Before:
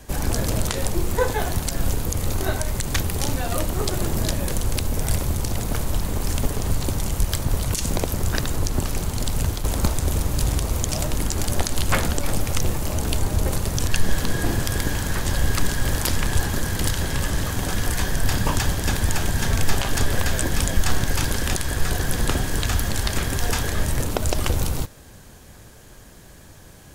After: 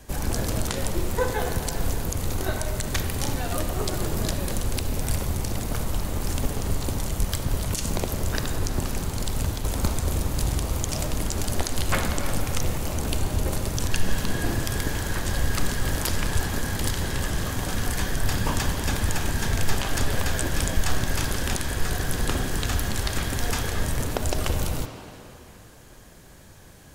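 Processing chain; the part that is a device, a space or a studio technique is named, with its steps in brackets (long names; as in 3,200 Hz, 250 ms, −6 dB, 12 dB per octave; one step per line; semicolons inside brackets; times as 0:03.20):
filtered reverb send (on a send: high-pass filter 170 Hz + low-pass filter 4,800 Hz + convolution reverb RT60 3.1 s, pre-delay 32 ms, DRR 5 dB)
on the sum: level −3.5 dB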